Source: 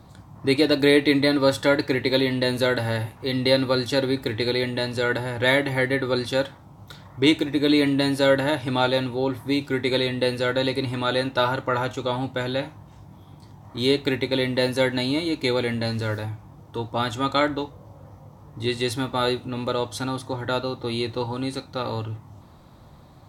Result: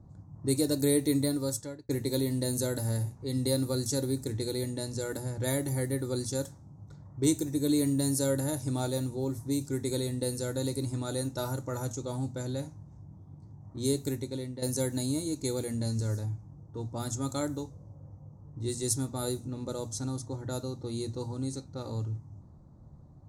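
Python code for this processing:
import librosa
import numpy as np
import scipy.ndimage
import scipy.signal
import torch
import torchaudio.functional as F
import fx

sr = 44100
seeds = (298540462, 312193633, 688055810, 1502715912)

y = fx.edit(x, sr, fx.fade_out_span(start_s=1.21, length_s=0.68),
    fx.fade_out_to(start_s=13.98, length_s=0.64, floor_db=-10.0), tone=tone)
y = fx.hum_notches(y, sr, base_hz=60, count=4)
y = fx.env_lowpass(y, sr, base_hz=1500.0, full_db=-19.5)
y = fx.curve_eq(y, sr, hz=(140.0, 3100.0, 6400.0), db=(0, -23, 11))
y = F.gain(torch.from_numpy(y), -1.5).numpy()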